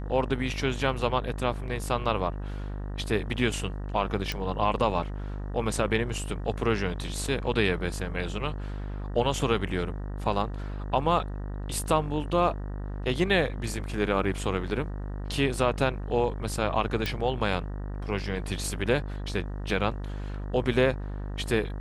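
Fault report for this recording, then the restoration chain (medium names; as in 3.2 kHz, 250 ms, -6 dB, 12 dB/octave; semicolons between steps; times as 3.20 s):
buzz 50 Hz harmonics 38 -34 dBFS
4.32 s: pop
17.06 s: pop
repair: de-click; de-hum 50 Hz, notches 38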